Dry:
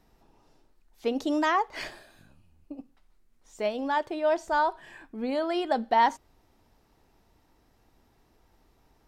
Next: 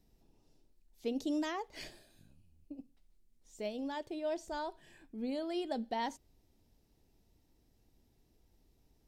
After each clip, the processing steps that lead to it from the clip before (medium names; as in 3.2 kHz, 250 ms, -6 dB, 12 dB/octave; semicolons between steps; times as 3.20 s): peaking EQ 1.2 kHz -15 dB 1.9 oct; trim -4 dB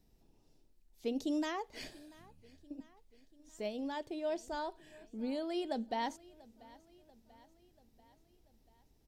feedback delay 688 ms, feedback 57%, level -22 dB